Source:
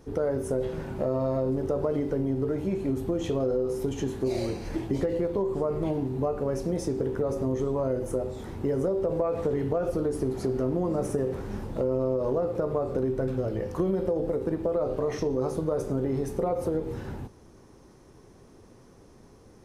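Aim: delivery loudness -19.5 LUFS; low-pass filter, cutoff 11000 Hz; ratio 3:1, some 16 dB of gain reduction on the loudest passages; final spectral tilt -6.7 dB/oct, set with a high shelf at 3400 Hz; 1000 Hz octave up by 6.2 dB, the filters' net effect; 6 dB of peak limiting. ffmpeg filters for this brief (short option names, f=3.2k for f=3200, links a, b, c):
-af "lowpass=11k,equalizer=f=1k:t=o:g=9,highshelf=f=3.4k:g=-6.5,acompressor=threshold=-44dB:ratio=3,volume=24dB,alimiter=limit=-9dB:level=0:latency=1"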